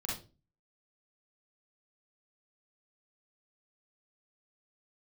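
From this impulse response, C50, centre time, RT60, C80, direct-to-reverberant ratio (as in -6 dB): 2.0 dB, 42 ms, 0.35 s, 11.0 dB, -4.5 dB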